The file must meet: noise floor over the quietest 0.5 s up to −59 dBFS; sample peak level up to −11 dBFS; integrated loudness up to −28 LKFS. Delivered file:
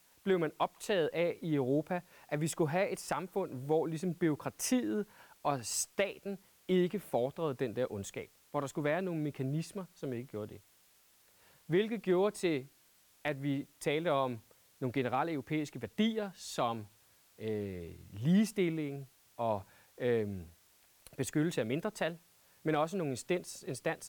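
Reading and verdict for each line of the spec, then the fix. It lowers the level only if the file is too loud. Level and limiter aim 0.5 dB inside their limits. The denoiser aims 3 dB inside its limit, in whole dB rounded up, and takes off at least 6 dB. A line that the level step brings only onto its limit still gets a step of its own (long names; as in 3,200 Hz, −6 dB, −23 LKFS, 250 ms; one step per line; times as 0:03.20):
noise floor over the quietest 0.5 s −67 dBFS: in spec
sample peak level −19.5 dBFS: in spec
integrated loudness −35.0 LKFS: in spec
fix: no processing needed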